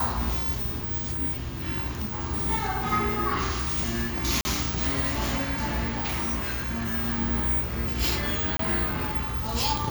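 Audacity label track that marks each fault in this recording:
4.410000	4.450000	dropout 40 ms
5.880000	6.950000	clipped -25 dBFS
8.570000	8.590000	dropout 23 ms

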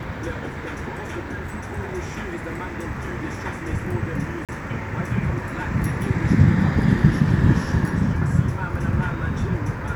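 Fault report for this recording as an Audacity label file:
4.450000	4.490000	dropout 37 ms

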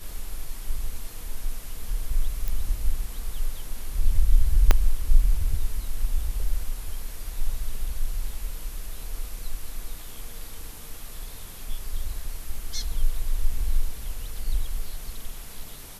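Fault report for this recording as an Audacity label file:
2.480000	2.480000	pop
4.710000	4.710000	pop -3 dBFS

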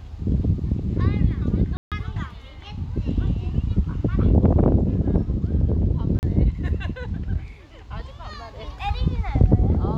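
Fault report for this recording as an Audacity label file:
1.770000	1.920000	dropout 147 ms
6.190000	6.230000	dropout 39 ms

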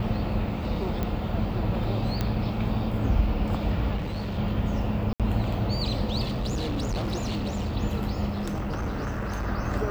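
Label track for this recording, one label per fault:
1.030000	1.030000	pop -16 dBFS
2.210000	2.210000	pop -13 dBFS
3.960000	4.390000	clipped -27 dBFS
5.130000	5.200000	dropout 67 ms
6.270000	7.770000	clipped -25 dBFS
8.300000	9.470000	clipped -26 dBFS

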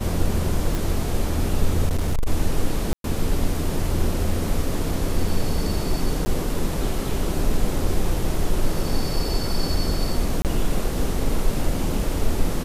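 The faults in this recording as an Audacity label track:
0.750000	0.750000	pop
1.860000	2.270000	clipped -17 dBFS
2.930000	3.040000	dropout 112 ms
5.280000	5.280000	dropout 3.1 ms
6.250000	6.260000	dropout 10 ms
10.420000	10.450000	dropout 28 ms

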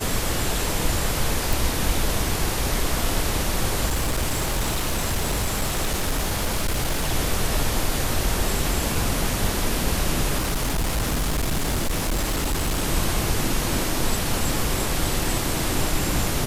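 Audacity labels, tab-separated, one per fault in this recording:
1.530000	1.530000	pop
3.860000	7.110000	clipped -18.5 dBFS
10.380000	12.840000	clipped -19.5 dBFS

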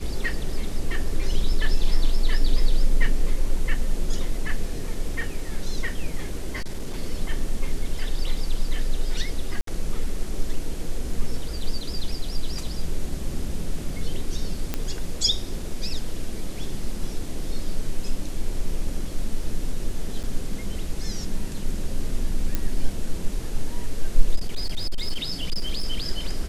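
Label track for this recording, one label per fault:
6.550000	6.960000	clipped -23.5 dBFS
9.610000	9.670000	dropout 63 ms
14.740000	14.740000	pop -11 dBFS
20.230000	20.240000	dropout 7.6 ms
22.550000	22.550000	pop -10 dBFS
24.350000	25.840000	clipped -18.5 dBFS

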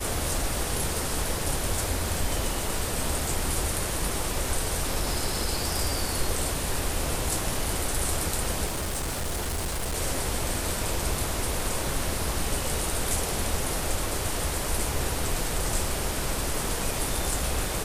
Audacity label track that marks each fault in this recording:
8.650000	9.960000	clipped -26 dBFS

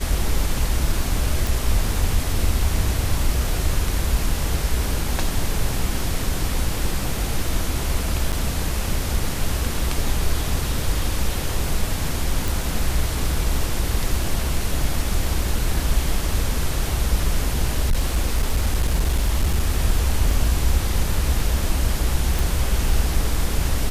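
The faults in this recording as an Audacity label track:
1.470000	1.470000	pop
8.320000	8.330000	dropout 6.9 ms
12.480000	12.480000	pop
17.850000	19.660000	clipped -14 dBFS
20.310000	20.310000	dropout 2.4 ms
22.390000	22.390000	pop

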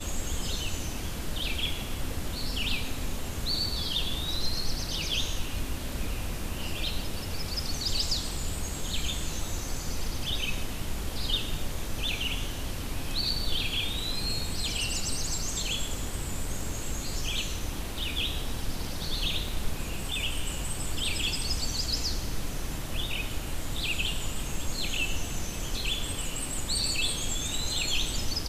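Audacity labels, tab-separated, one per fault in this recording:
19.480000	19.480000	dropout 2.2 ms

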